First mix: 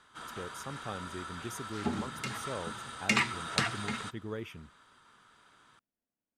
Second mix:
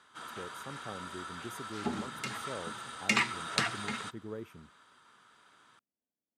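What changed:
speech: add parametric band 3,300 Hz −14 dB 2.5 octaves
master: add high-pass filter 180 Hz 6 dB per octave

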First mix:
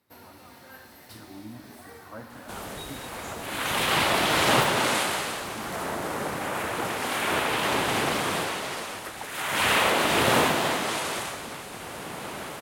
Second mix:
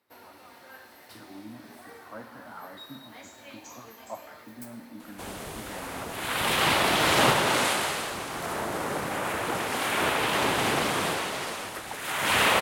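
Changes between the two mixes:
speech: add Bessel high-pass filter 160 Hz, order 8
first sound: add bass and treble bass −11 dB, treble −4 dB
second sound: entry +2.70 s

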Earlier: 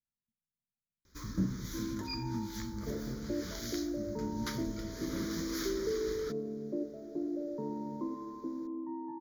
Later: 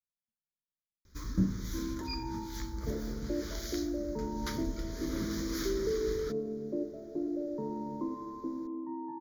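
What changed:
speech −9.0 dB
first sound: add low-shelf EQ 160 Hz +8.5 dB
reverb: on, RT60 1.2 s

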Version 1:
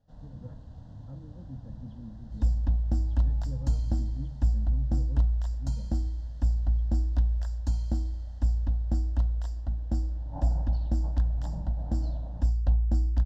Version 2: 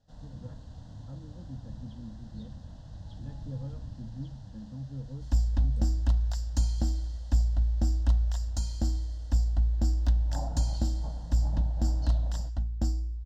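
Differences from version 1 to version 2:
second sound: entry +2.90 s
master: add high-shelf EQ 2,300 Hz +11.5 dB

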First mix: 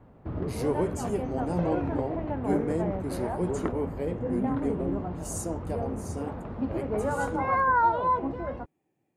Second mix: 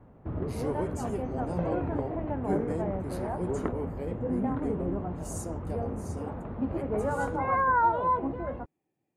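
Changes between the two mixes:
speech −5.0 dB
background: add high-frequency loss of the air 260 metres

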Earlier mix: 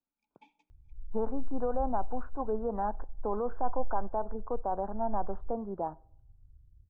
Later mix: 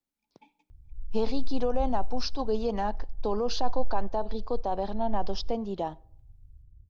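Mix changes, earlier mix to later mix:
speech: remove Chebyshev low-pass filter 1,500 Hz, order 5
master: add low-shelf EQ 460 Hz +5.5 dB

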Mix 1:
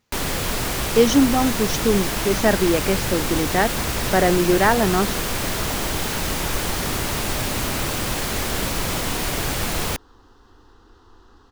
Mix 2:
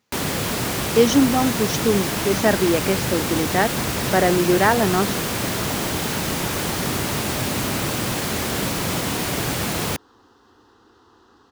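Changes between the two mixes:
first sound: add low-shelf EQ 230 Hz +8 dB
master: add high-pass filter 130 Hz 12 dB per octave

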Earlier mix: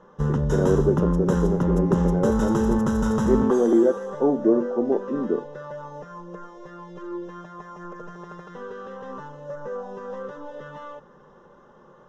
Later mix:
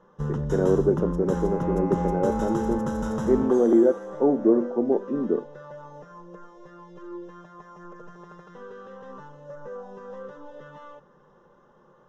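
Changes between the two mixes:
first sound −7.5 dB
reverb: on, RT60 0.50 s

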